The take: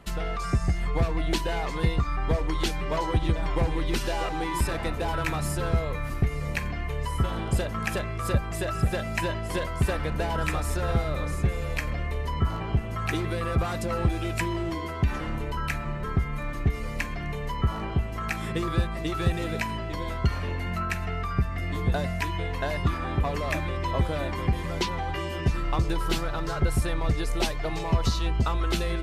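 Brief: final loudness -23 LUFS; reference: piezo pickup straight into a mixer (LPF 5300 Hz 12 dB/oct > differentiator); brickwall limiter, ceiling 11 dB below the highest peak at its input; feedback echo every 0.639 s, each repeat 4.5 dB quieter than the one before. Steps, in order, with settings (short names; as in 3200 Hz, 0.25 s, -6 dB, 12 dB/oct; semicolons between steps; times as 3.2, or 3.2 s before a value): limiter -22.5 dBFS; LPF 5300 Hz 12 dB/oct; differentiator; feedback echo 0.639 s, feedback 60%, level -4.5 dB; gain +24 dB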